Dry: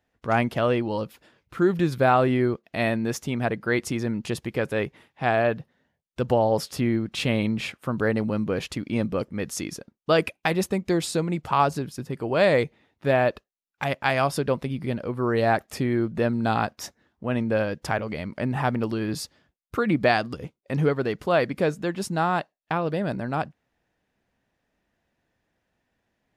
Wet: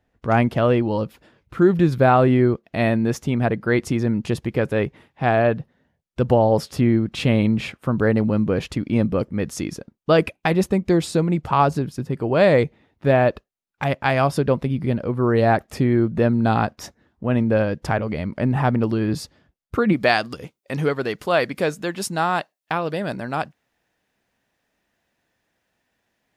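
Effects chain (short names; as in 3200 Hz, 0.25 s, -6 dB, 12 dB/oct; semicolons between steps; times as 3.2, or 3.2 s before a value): tilt -1.5 dB/oct, from 19.92 s +1.5 dB/oct; gain +3 dB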